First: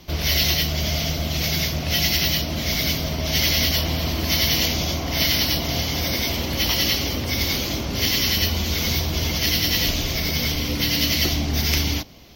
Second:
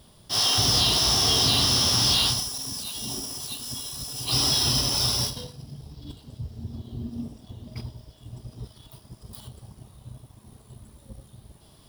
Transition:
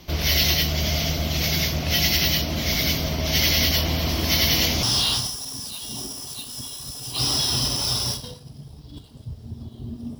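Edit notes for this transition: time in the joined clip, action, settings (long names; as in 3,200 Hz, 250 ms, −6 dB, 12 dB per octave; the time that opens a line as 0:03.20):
first
0:04.09: mix in second from 0:01.22 0.74 s −14 dB
0:04.83: continue with second from 0:01.96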